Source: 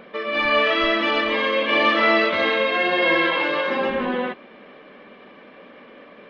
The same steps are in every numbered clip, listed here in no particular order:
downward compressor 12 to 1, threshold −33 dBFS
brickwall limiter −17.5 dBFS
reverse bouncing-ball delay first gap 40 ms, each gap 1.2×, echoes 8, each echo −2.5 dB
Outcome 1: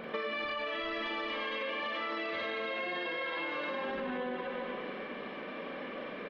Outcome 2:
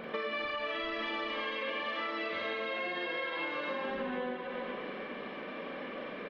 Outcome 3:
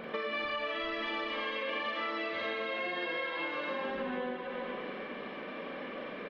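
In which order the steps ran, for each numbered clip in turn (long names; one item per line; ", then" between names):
reverse bouncing-ball delay, then brickwall limiter, then downward compressor
brickwall limiter, then reverse bouncing-ball delay, then downward compressor
reverse bouncing-ball delay, then downward compressor, then brickwall limiter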